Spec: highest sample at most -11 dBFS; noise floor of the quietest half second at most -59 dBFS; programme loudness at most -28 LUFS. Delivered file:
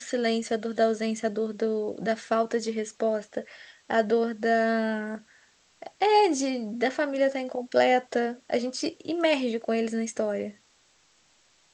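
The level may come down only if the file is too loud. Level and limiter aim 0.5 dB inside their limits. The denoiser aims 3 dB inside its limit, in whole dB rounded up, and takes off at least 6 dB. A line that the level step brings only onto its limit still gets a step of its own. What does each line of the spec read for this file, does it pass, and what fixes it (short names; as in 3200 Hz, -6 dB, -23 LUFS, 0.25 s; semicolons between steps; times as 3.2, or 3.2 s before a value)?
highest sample -8.5 dBFS: fail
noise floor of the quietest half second -63 dBFS: OK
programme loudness -27.0 LUFS: fail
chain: gain -1.5 dB; limiter -11.5 dBFS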